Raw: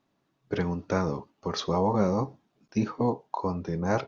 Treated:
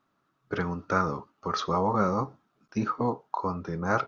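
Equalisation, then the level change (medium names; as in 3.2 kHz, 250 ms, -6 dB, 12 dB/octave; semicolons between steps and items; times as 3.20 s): peaking EQ 1.3 kHz +14.5 dB 0.49 oct; -2.5 dB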